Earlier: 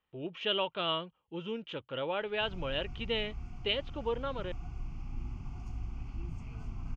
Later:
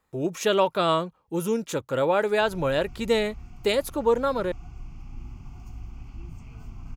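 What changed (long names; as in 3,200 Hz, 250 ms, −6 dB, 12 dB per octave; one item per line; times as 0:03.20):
speech: remove transistor ladder low-pass 3,200 Hz, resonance 80%
master: remove high-frequency loss of the air 61 metres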